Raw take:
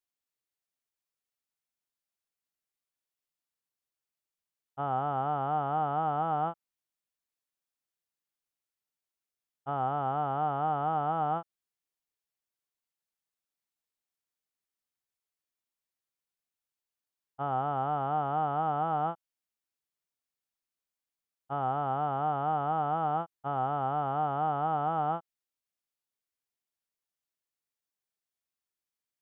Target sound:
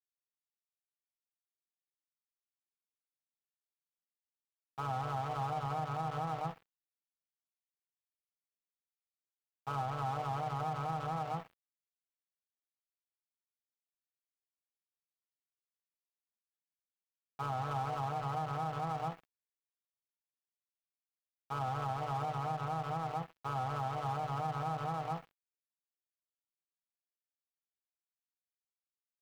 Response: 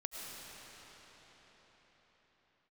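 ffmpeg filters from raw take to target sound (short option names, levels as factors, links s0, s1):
-filter_complex "[0:a]aemphasis=mode=production:type=75fm,aecho=1:1:64|128|192|256:0.168|0.0739|0.0325|0.0143,asplit=3[s0][s1][s2];[s1]asetrate=35002,aresample=44100,atempo=1.25992,volume=0.158[s3];[s2]asetrate=37084,aresample=44100,atempo=1.18921,volume=0.355[s4];[s0][s3][s4]amix=inputs=3:normalize=0,bandreject=f=50:t=h:w=6,bandreject=f=100:t=h:w=6,bandreject=f=150:t=h:w=6,aecho=1:1:6.3:0.84,acrossover=split=210[s5][s6];[s6]acompressor=threshold=0.0282:ratio=6[s7];[s5][s7]amix=inputs=2:normalize=0,superequalizer=6b=0.316:8b=0.631,aeval=exprs='sgn(val(0))*max(abs(val(0))-0.00531,0)':c=same,alimiter=level_in=1.41:limit=0.0631:level=0:latency=1:release=26,volume=0.708"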